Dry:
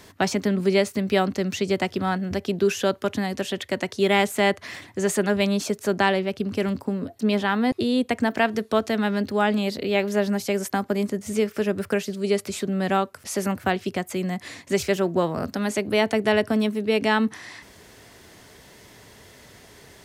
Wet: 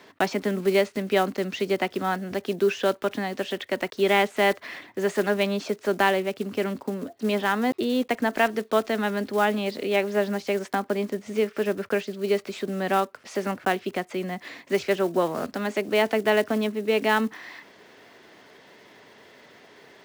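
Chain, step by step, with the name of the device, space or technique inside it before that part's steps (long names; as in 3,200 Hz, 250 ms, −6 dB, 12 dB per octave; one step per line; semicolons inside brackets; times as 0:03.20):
early digital voice recorder (band-pass filter 250–3,600 Hz; one scale factor per block 5 bits)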